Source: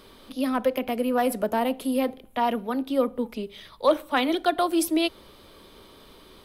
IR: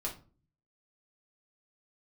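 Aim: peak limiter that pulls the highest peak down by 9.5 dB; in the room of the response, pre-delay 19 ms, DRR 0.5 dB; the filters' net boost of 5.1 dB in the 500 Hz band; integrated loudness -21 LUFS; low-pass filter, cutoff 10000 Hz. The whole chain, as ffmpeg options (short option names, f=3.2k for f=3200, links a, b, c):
-filter_complex "[0:a]lowpass=10k,equalizer=f=500:t=o:g=6,alimiter=limit=-14.5dB:level=0:latency=1,asplit=2[a][b];[1:a]atrim=start_sample=2205,adelay=19[c];[b][c]afir=irnorm=-1:irlink=0,volume=-2dB[d];[a][d]amix=inputs=2:normalize=0,volume=1.5dB"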